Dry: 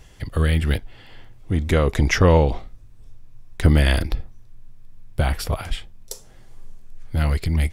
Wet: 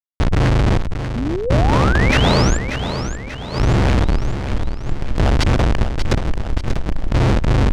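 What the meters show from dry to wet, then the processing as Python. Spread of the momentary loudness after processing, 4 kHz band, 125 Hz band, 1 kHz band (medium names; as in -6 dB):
10 LU, +6.5 dB, +4.5 dB, +7.5 dB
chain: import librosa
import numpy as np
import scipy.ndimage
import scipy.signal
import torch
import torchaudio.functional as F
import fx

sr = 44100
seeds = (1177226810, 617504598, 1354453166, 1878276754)

y = fx.cycle_switch(x, sr, every=3, mode='inverted')
y = fx.low_shelf(y, sr, hz=440.0, db=7.0)
y = fx.rider(y, sr, range_db=5, speed_s=0.5)
y = fx.comb_fb(y, sr, f0_hz=64.0, decay_s=0.18, harmonics='all', damping=0.0, mix_pct=70)
y = fx.schmitt(y, sr, flips_db=-29.5)
y = fx.tube_stage(y, sr, drive_db=31.0, bias=0.6)
y = fx.fuzz(y, sr, gain_db=55.0, gate_db=-56.0)
y = fx.spec_paint(y, sr, seeds[0], shape='rise', start_s=1.15, length_s=1.43, low_hz=220.0, high_hz=7600.0, level_db=-23.0)
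y = fx.air_absorb(y, sr, metres=89.0)
y = fx.echo_feedback(y, sr, ms=587, feedback_pct=48, wet_db=-9.0)
y = fx.pre_swell(y, sr, db_per_s=140.0)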